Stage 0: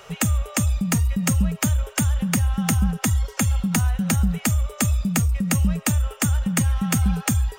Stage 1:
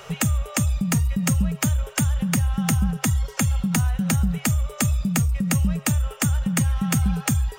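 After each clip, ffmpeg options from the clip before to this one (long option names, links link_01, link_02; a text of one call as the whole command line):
ffmpeg -i in.wav -filter_complex "[0:a]equalizer=frequency=140:width_type=o:width=0.2:gain=9.5,asplit=2[link_01][link_02];[link_02]acompressor=threshold=-29dB:ratio=6,volume=2dB[link_03];[link_01][link_03]amix=inputs=2:normalize=0,volume=-4dB" out.wav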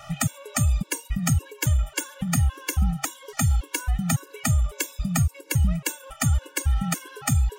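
ffmpeg -i in.wav -af "equalizer=frequency=210:width_type=o:width=0.41:gain=-8.5,afftfilt=real='re*gt(sin(2*PI*1.8*pts/sr)*(1-2*mod(floor(b*sr/1024/290),2)),0)':imag='im*gt(sin(2*PI*1.8*pts/sr)*(1-2*mod(floor(b*sr/1024/290),2)),0)':win_size=1024:overlap=0.75,volume=1.5dB" out.wav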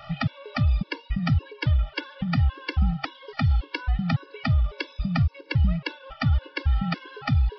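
ffmpeg -i in.wav -af "aresample=11025,aresample=44100" out.wav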